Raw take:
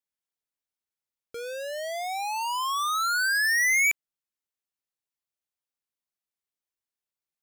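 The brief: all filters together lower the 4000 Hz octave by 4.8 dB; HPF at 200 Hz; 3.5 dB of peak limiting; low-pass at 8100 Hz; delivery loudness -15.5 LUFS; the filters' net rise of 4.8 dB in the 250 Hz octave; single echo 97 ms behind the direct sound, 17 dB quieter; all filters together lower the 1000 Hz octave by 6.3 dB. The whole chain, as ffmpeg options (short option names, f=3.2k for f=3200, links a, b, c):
-af "highpass=200,lowpass=8.1k,equalizer=f=250:t=o:g=8.5,equalizer=f=1k:t=o:g=-8.5,equalizer=f=4k:t=o:g=-5.5,alimiter=level_in=1.5dB:limit=-24dB:level=0:latency=1,volume=-1.5dB,aecho=1:1:97:0.141,volume=15dB"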